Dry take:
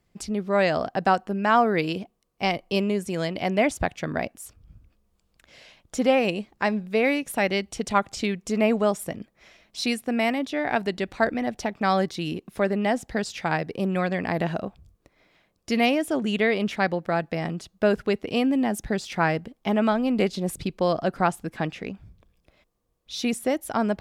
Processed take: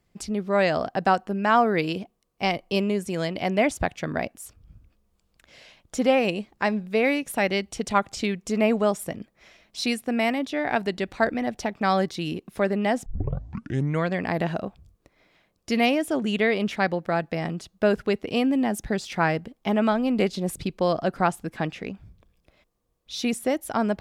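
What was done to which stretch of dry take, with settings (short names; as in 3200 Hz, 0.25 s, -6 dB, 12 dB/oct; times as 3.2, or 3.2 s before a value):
13.06 tape start 1.04 s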